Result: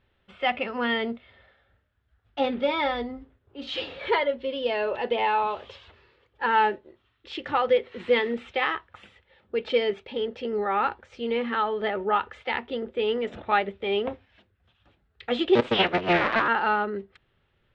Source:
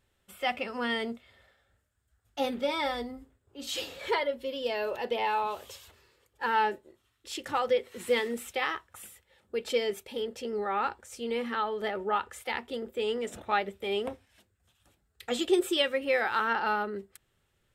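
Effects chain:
0:15.55–0:16.48: sub-harmonics by changed cycles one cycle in 3, inverted
low-pass filter 3,600 Hz 24 dB per octave
level +5 dB

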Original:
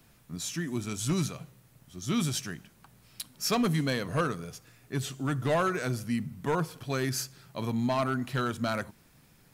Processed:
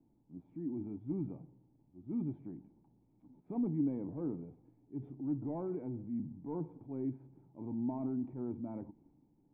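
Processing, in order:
transient designer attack −7 dB, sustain +5 dB
formant resonators in series u
level +1.5 dB

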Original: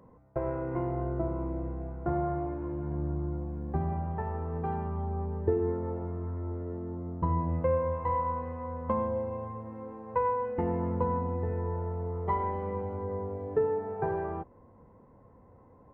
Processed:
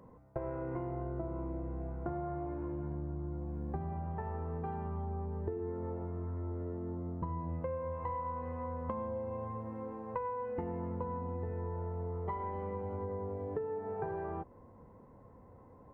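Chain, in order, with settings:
downward compressor 6 to 1, threshold −35 dBFS, peak gain reduction 13 dB

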